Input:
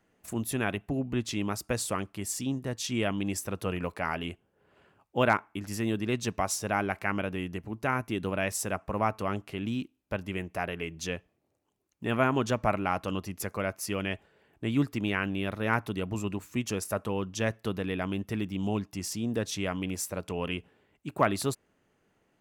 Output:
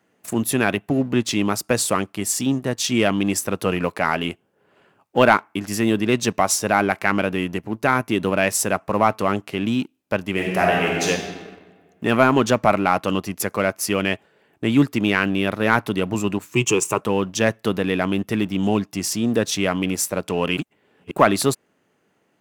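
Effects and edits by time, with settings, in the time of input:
0:10.34–0:11.08: thrown reverb, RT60 1.9 s, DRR −2.5 dB
0:16.54–0:17.01: EQ curve with evenly spaced ripples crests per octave 0.7, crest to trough 14 dB
0:20.57–0:21.11: reverse
whole clip: high-pass filter 140 Hz 12 dB per octave; leveller curve on the samples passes 1; level +7.5 dB

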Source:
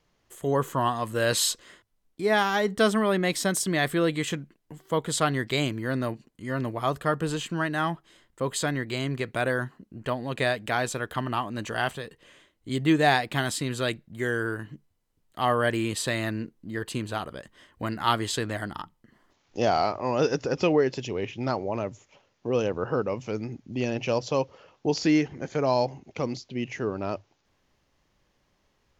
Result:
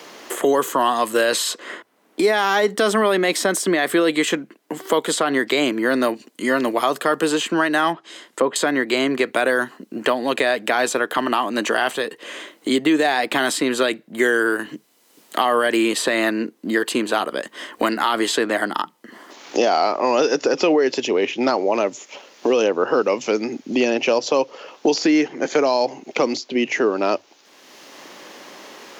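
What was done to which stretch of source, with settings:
0:07.92–0:08.56: treble cut that deepens with the level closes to 1,300 Hz, closed at −29.5 dBFS
whole clip: high-pass filter 260 Hz 24 dB per octave; boost into a limiter +17.5 dB; multiband upward and downward compressor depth 70%; level −6.5 dB

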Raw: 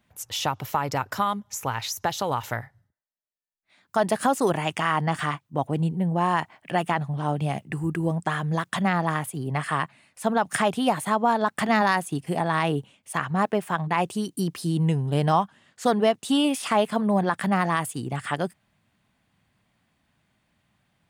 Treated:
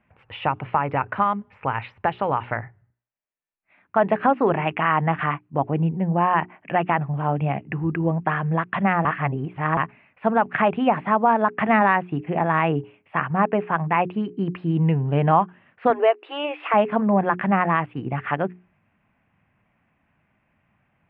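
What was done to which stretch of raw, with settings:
0:09.05–0:09.77: reverse
0:15.90–0:16.74: linear-phase brick-wall high-pass 310 Hz
whole clip: elliptic low-pass filter 2,600 Hz, stop band 60 dB; mains-hum notches 60/120/180/240/300/360/420 Hz; level +4 dB

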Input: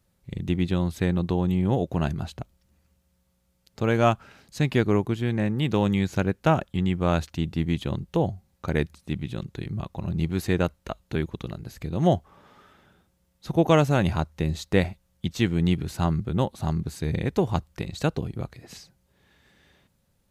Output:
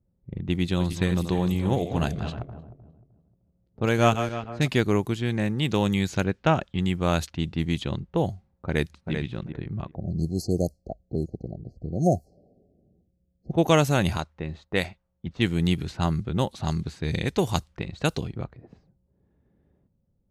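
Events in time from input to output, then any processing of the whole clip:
0:00.62–0:04.68: feedback delay that plays each chunk backwards 153 ms, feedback 57%, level −8.5 dB
0:06.24–0:06.78: low-pass filter 5,000 Hz
0:08.67–0:09.13: delay throw 390 ms, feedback 15%, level −6.5 dB
0:09.95–0:13.52: linear-phase brick-wall band-stop 780–4,100 Hz
0:14.17–0:15.27: low-shelf EQ 440 Hz −7.5 dB
0:16.51–0:18.44: high-shelf EQ 3,200 Hz +8.5 dB
whole clip: low-pass that shuts in the quiet parts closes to 410 Hz, open at −19.5 dBFS; high-shelf EQ 3,300 Hz +10 dB; level −1 dB

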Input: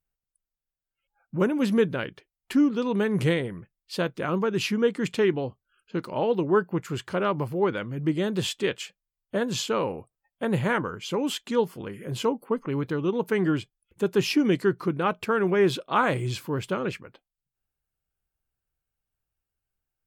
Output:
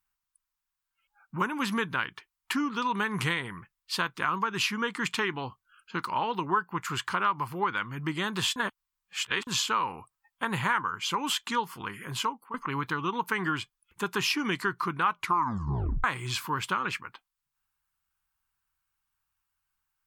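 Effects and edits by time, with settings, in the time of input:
0:08.56–0:09.47: reverse
0:12.04–0:12.54: fade out, to −16.5 dB
0:15.14: tape stop 0.90 s
whole clip: low shelf with overshoot 760 Hz −10 dB, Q 3; downward compressor 2.5 to 1, threshold −32 dBFS; level +5.5 dB

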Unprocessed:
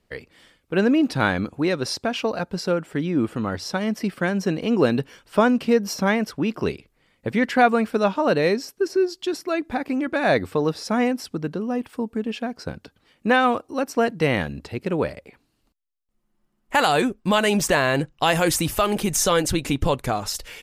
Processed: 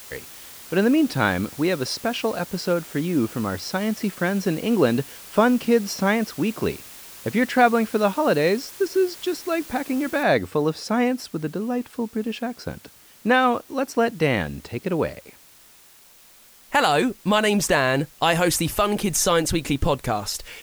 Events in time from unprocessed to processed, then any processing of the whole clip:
0:10.23: noise floor change −42 dB −51 dB

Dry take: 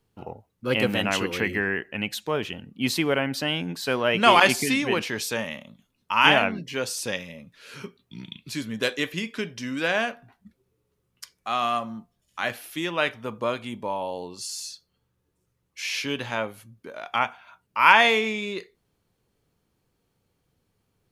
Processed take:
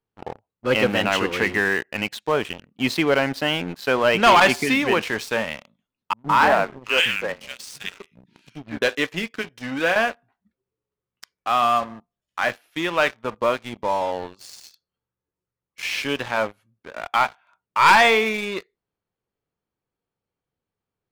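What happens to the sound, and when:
0:06.13–0:08.82: three-band delay without the direct sound lows, mids, highs 160/730 ms, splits 280/2,000 Hz
0:09.33–0:09.96: notch comb filter 200 Hz
whole clip: low-pass filter 1,500 Hz 6 dB per octave; low-shelf EQ 430 Hz −10 dB; leveller curve on the samples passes 3; level −1 dB

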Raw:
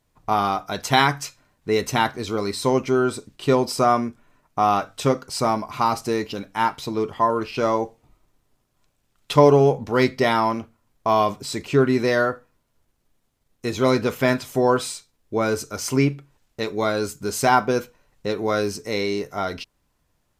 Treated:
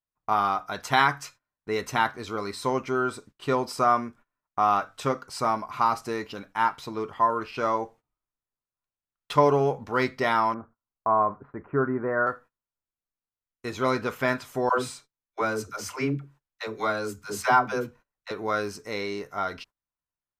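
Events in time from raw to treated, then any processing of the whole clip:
0:10.54–0:12.27: Butterworth low-pass 1,600 Hz
0:14.69–0:18.31: all-pass dispersion lows, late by 100 ms, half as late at 410 Hz
whole clip: noise gate −42 dBFS, range −22 dB; parametric band 1,300 Hz +9 dB 1.5 octaves; level −9 dB

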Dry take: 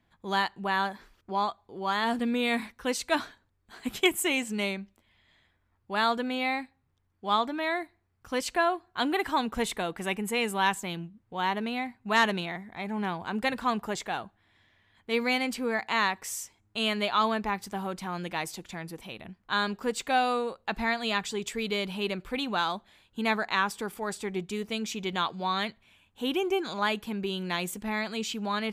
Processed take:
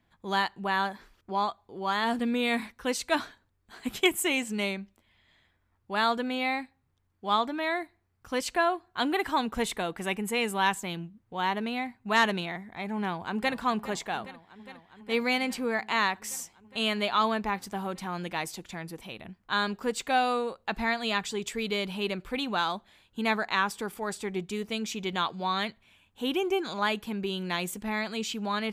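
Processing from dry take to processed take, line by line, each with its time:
0:12.95–0:13.57: delay throw 410 ms, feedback 85%, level −16.5 dB

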